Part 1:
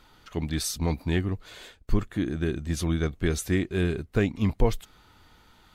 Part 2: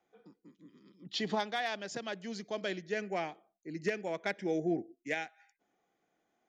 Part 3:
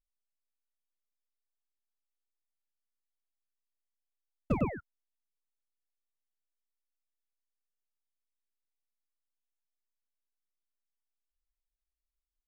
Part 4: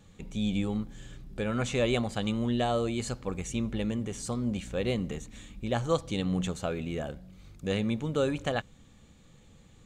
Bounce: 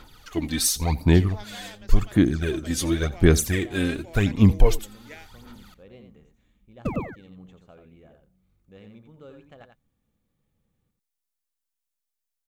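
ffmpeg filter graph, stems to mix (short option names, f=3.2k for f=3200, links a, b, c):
-filter_complex "[0:a]aphaser=in_gain=1:out_gain=1:delay=3.9:decay=0.67:speed=0.91:type=sinusoidal,volume=0.5dB,asplit=2[a][b];[b]volume=-20dB[c];[1:a]volume=-10dB[d];[2:a]adelay=2350,volume=1.5dB,asplit=2[e][f];[f]volume=-18.5dB[g];[3:a]adynamicsmooth=sensitivity=0.5:basefreq=2.5k,adelay=1050,volume=-18.5dB,asplit=2[h][i];[i]volume=-6.5dB[j];[c][g][j]amix=inputs=3:normalize=0,aecho=0:1:86:1[k];[a][d][e][h][k]amix=inputs=5:normalize=0,highshelf=f=4.7k:g=8"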